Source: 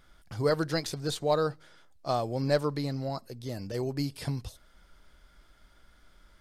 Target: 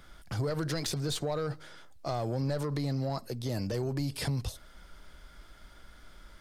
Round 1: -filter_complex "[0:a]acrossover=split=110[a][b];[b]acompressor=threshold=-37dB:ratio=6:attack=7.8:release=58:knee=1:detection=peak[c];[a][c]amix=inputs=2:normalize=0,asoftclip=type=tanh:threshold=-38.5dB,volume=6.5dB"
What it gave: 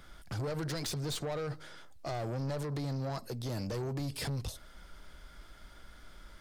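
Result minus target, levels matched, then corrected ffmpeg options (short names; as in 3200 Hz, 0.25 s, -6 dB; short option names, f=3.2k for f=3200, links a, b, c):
soft clip: distortion +9 dB
-filter_complex "[0:a]acrossover=split=110[a][b];[b]acompressor=threshold=-37dB:ratio=6:attack=7.8:release=58:knee=1:detection=peak[c];[a][c]amix=inputs=2:normalize=0,asoftclip=type=tanh:threshold=-30dB,volume=6.5dB"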